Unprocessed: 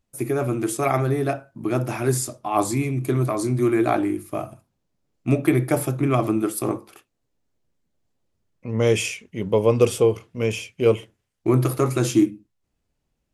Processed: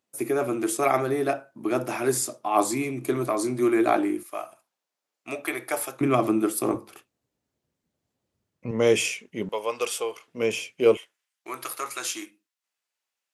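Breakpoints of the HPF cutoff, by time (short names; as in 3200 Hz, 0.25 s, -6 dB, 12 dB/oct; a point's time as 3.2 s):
280 Hz
from 4.23 s 770 Hz
from 6.01 s 200 Hz
from 6.74 s 79 Hz
from 8.71 s 220 Hz
from 9.49 s 920 Hz
from 10.28 s 280 Hz
from 10.97 s 1200 Hz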